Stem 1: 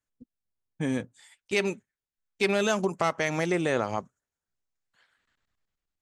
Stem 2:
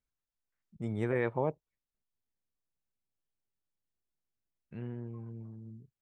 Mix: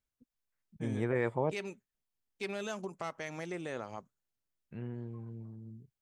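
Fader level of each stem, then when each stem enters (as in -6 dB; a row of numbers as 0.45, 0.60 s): -13.5, -0.5 dB; 0.00, 0.00 s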